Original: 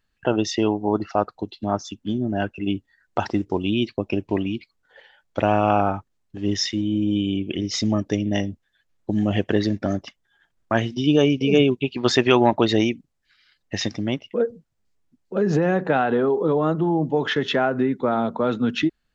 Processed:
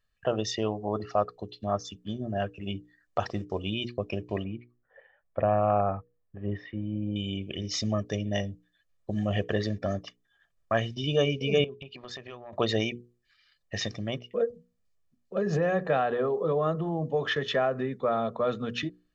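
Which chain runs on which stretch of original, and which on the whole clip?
4.44–7.16 s: low-pass 1.9 kHz 24 dB/octave + peaking EQ 1.3 kHz -3 dB 0.84 oct
11.64–12.53 s: treble shelf 6 kHz -9 dB + transient shaper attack -4 dB, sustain +1 dB + compression 12:1, threshold -31 dBFS
whole clip: hum notches 60/120/180/240/300/360/420/480 Hz; comb 1.7 ms, depth 58%; trim -6.5 dB

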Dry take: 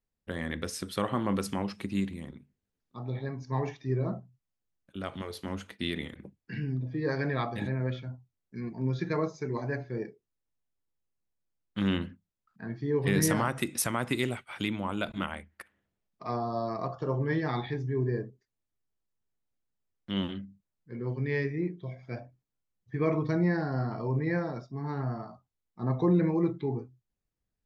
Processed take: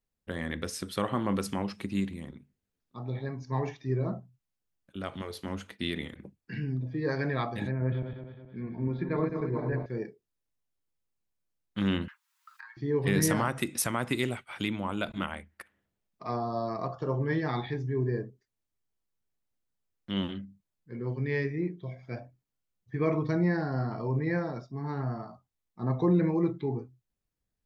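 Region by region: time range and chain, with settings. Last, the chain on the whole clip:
7.71–9.86 s: backward echo that repeats 106 ms, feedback 68%, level -6 dB + distance through air 430 m
12.08–12.77 s: steep high-pass 880 Hz 96 dB/octave + comb 7.4 ms, depth 73% + three bands compressed up and down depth 100%
whole clip: none

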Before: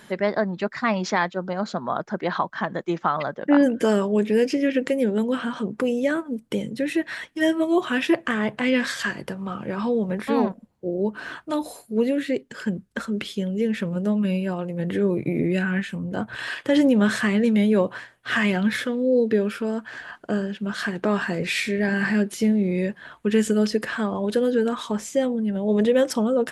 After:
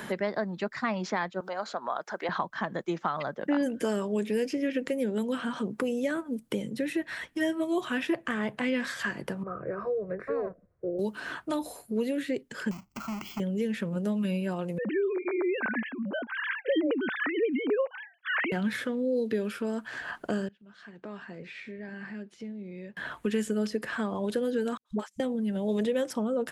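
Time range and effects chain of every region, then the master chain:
1.40–2.29 s: high-pass 540 Hz + upward compressor, threshold -29 dBFS
9.43–10.99 s: low-pass 1.2 kHz + static phaser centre 870 Hz, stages 6
12.71–13.40 s: square wave that keeps the level + compression 4:1, threshold -32 dBFS + static phaser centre 2.5 kHz, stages 8
14.78–18.52 s: formants replaced by sine waves + high-pass 190 Hz
20.48–22.97 s: distance through air 130 m + inverted gate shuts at -29 dBFS, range -26 dB
24.77–25.20 s: hum notches 50/100/150/200/250/300/350 Hz + gate -28 dBFS, range -40 dB + phase dispersion highs, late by 85 ms, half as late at 340 Hz
whole clip: treble shelf 9.3 kHz +7.5 dB; three bands compressed up and down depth 70%; trim -7.5 dB

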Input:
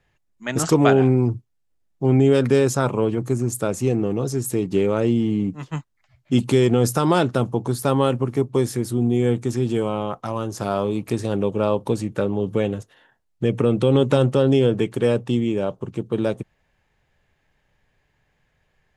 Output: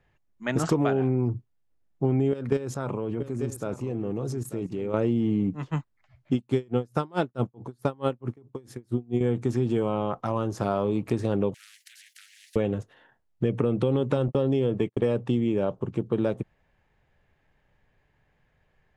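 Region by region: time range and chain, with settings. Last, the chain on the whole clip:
2.31–4.94 s: level held to a coarse grid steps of 15 dB + delay 890 ms -13.5 dB
6.34–9.21 s: expander -28 dBFS + logarithmic tremolo 4.6 Hz, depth 35 dB
11.54–12.56 s: steep high-pass 1.9 kHz 96 dB/octave + spectrum-flattening compressor 10:1
14.28–15.15 s: gate -28 dBFS, range -41 dB + band-stop 1.5 kHz, Q 7.9
whole clip: treble shelf 3.8 kHz -12 dB; compression, threshold -20 dBFS

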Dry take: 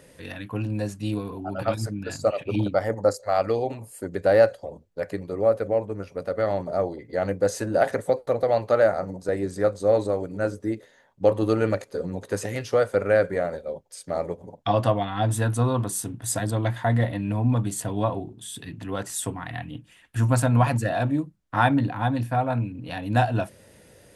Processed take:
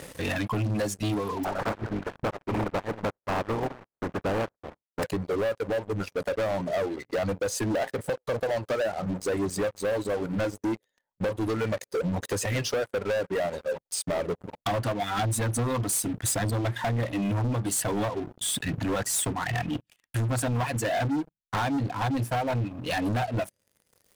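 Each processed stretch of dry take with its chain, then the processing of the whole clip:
1.43–5.02 s: spectral contrast reduction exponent 0.24 + gate -42 dBFS, range -12 dB + Gaussian low-pass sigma 6.5 samples
whole clip: reverb removal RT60 1.8 s; compression 10:1, threshold -30 dBFS; waveshaping leveller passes 5; trim -6 dB

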